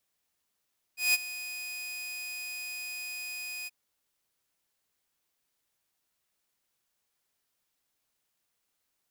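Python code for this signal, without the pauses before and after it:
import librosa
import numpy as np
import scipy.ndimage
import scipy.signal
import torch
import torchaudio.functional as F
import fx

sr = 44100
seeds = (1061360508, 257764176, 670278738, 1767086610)

y = fx.adsr_tone(sr, wave='saw', hz=2490.0, attack_ms=170.0, decay_ms=28.0, sustain_db=-16.0, held_s=2.7, release_ms=27.0, level_db=-18.0)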